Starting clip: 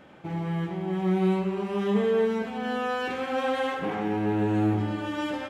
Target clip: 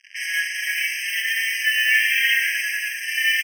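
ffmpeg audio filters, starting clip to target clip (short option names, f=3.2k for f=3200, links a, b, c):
-filter_complex "[0:a]aeval=exprs='0.2*(cos(1*acos(clip(val(0)/0.2,-1,1)))-cos(1*PI/2))+0.00316*(cos(4*acos(clip(val(0)/0.2,-1,1)))-cos(4*PI/2))+0.00316*(cos(7*acos(clip(val(0)/0.2,-1,1)))-cos(7*PI/2))':c=same,asubboost=boost=9:cutoff=150,atempo=1.6,crystalizer=i=9.5:c=0,asplit=2[a][b];[b]asoftclip=type=hard:threshold=-29.5dB,volume=-9dB[c];[a][c]amix=inputs=2:normalize=0,asplit=4[d][e][f][g];[e]asetrate=29433,aresample=44100,atempo=1.49831,volume=-16dB[h];[f]asetrate=52444,aresample=44100,atempo=0.840896,volume=-13dB[i];[g]asetrate=66075,aresample=44100,atempo=0.66742,volume=-15dB[j];[d][h][i][j]amix=inputs=4:normalize=0,lowpass=1.7k,asplit=2[k][l];[l]aecho=0:1:30|63|99.3|139.2|183.2:0.631|0.398|0.251|0.158|0.1[m];[k][m]amix=inputs=2:normalize=0,acrusher=bits=5:mix=0:aa=0.5,alimiter=level_in=9.5dB:limit=-1dB:release=50:level=0:latency=1,afftfilt=real='re*eq(mod(floor(b*sr/1024/1600),2),1)':imag='im*eq(mod(floor(b*sr/1024/1600),2),1)':win_size=1024:overlap=0.75,volume=5.5dB"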